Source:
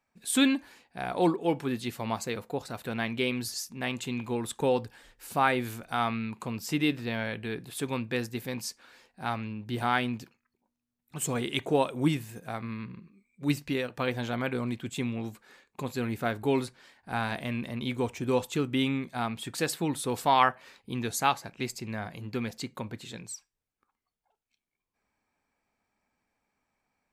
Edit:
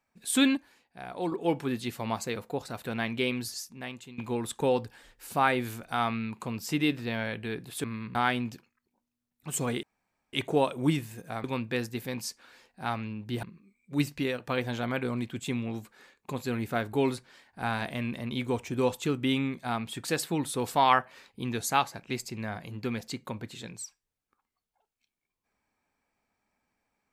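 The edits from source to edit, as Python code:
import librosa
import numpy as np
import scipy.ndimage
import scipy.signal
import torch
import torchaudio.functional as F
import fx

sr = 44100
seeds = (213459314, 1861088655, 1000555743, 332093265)

y = fx.edit(x, sr, fx.clip_gain(start_s=0.57, length_s=0.75, db=-7.5),
    fx.fade_out_to(start_s=3.3, length_s=0.88, floor_db=-17.0),
    fx.swap(start_s=7.84, length_s=1.99, other_s=12.62, other_length_s=0.31),
    fx.insert_room_tone(at_s=11.51, length_s=0.5), tone=tone)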